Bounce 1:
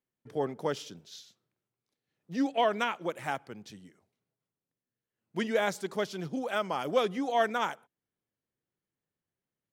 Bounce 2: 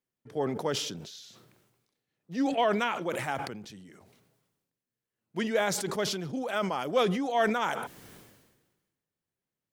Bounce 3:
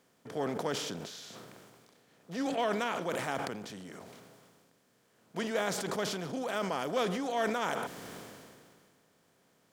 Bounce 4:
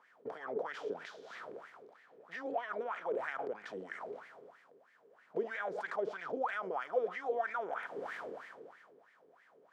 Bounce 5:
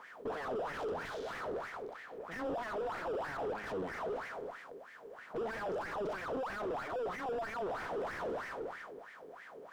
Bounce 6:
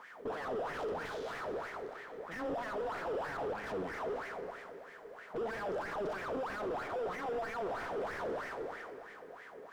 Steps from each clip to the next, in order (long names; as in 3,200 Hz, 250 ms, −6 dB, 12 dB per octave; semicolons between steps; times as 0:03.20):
level that may fall only so fast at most 45 dB per second
compressor on every frequency bin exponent 0.6; level −7.5 dB
downward compressor 6 to 1, threshold −40 dBFS, peak gain reduction 13.5 dB; LFO wah 3.1 Hz 400–2,000 Hz, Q 6.6; level +16 dB
tube saturation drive 48 dB, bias 0.25; slew-rate limiting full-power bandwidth 2.6 Hz; level +14 dB
convolution reverb RT60 3.2 s, pre-delay 51 ms, DRR 10.5 dB